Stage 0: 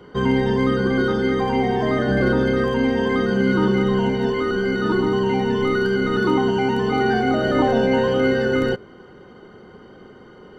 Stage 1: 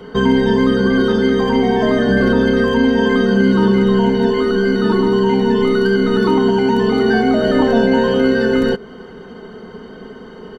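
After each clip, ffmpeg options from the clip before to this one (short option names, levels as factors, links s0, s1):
-filter_complex "[0:a]aecho=1:1:4.5:0.67,asplit=2[s0][s1];[s1]acompressor=threshold=0.0631:ratio=6,volume=1.41[s2];[s0][s2]amix=inputs=2:normalize=0"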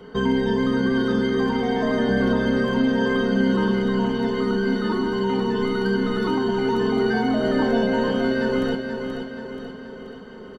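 -af "aecho=1:1:480|960|1440|1920|2400|2880:0.447|0.232|0.121|0.0628|0.0327|0.017,volume=0.422"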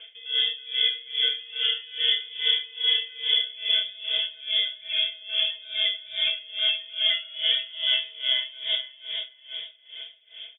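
-af "lowpass=f=3100:t=q:w=0.5098,lowpass=f=3100:t=q:w=0.6013,lowpass=f=3100:t=q:w=0.9,lowpass=f=3100:t=q:w=2.563,afreqshift=-3600,aeval=exprs='val(0)*pow(10,-23*(0.5-0.5*cos(2*PI*2.4*n/s))/20)':c=same"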